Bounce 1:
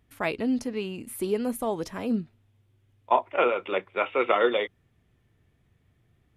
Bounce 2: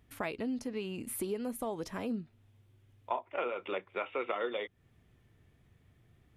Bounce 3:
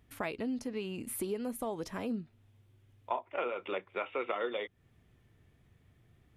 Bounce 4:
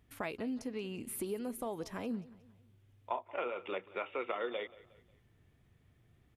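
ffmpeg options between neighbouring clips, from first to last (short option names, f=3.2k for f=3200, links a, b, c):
-af "acompressor=threshold=-37dB:ratio=3,volume=1dB"
-af anull
-af "aecho=1:1:180|360|540:0.1|0.044|0.0194,volume=-2.5dB"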